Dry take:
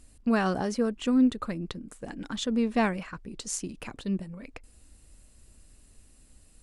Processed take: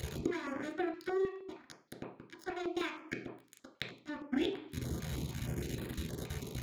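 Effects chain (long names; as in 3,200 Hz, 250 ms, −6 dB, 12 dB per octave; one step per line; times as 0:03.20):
pitch shift by two crossfaded delay taps +7 semitones
low-pass filter 9,200 Hz 12 dB per octave
gate with flip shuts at −33 dBFS, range −27 dB
time-frequency box erased 0:00.36–0:02.27, 1,200–3,300 Hz
dead-zone distortion −57.5 dBFS
leveller curve on the samples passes 2
high-pass filter 64 Hz
convolution reverb RT60 0.45 s, pre-delay 3 ms, DRR 1.5 dB
downward compressor 3 to 1, threshold −47 dBFS, peak gain reduction 13 dB
notch on a step sequencer 6.4 Hz 290–6,000 Hz
level +13.5 dB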